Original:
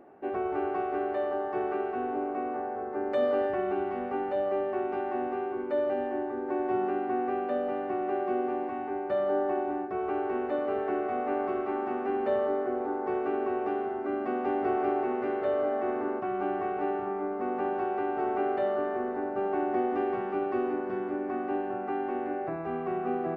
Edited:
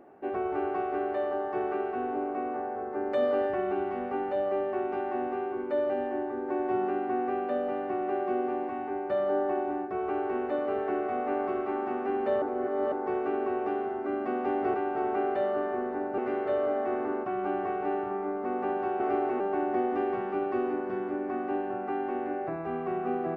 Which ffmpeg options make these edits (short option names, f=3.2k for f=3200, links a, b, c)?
-filter_complex "[0:a]asplit=7[a][b][c][d][e][f][g];[a]atrim=end=12.422[h];[b]atrim=start=12.418:end=12.922,asetpts=PTS-STARTPTS,areverse[i];[c]atrim=start=12.918:end=14.742[j];[d]atrim=start=17.958:end=19.402[k];[e]atrim=start=15.138:end=17.962[l];[f]atrim=start=14.738:end=15.142[m];[g]atrim=start=19.398[n];[h][i]acrossfade=d=0.004:c1=hsin:c2=hsin[o];[o][j]acrossfade=d=0.004:c1=hsin:c2=hsin[p];[p][k]acrossfade=d=0.004:c1=hsin:c2=hsin[q];[q][l]acrossfade=d=0.004:c1=hsin:c2=hsin[r];[r][m]acrossfade=d=0.004:c1=hsin:c2=hsin[s];[s][n]acrossfade=d=0.004:c1=hsin:c2=hsin"